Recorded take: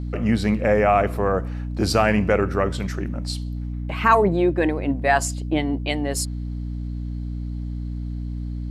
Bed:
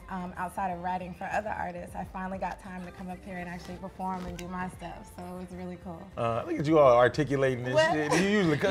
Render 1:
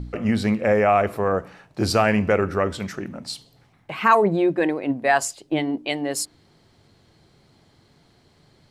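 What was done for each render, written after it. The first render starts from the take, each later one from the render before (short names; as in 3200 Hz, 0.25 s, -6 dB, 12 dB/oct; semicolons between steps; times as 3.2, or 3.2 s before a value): de-hum 60 Hz, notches 5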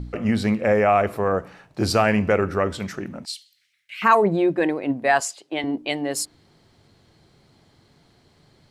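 3.25–4.02 inverse Chebyshev high-pass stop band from 1000 Hz; 5.2–5.64 weighting filter A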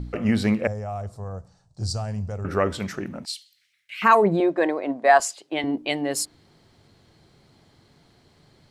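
0.67–2.45 EQ curve 110 Hz 0 dB, 310 Hz -21 dB, 760 Hz -14 dB, 2400 Hz -29 dB, 4600 Hz -5 dB, 8200 Hz -2 dB, 14000 Hz -27 dB; 4.4–5.2 speaker cabinet 310–8700 Hz, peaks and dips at 650 Hz +6 dB, 1100 Hz +5 dB, 2700 Hz -6 dB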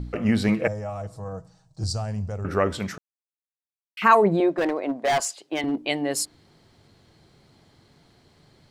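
0.48–1.84 comb 6.3 ms; 2.98–3.97 mute; 4.55–5.82 hard clip -19 dBFS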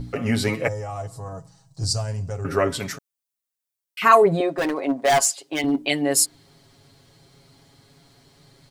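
high shelf 5700 Hz +10.5 dB; comb 7.3 ms, depth 71%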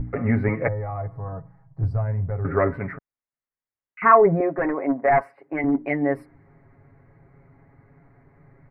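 elliptic low-pass 2100 Hz, stop band 40 dB; low shelf 110 Hz +8.5 dB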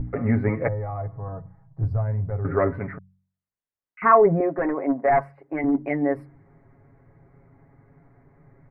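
high shelf 2200 Hz -8.5 dB; de-hum 46.87 Hz, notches 4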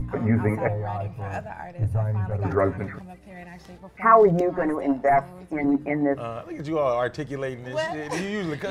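add bed -3.5 dB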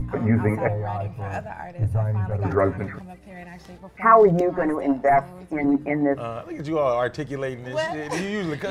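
gain +1.5 dB; limiter -3 dBFS, peak gain reduction 0.5 dB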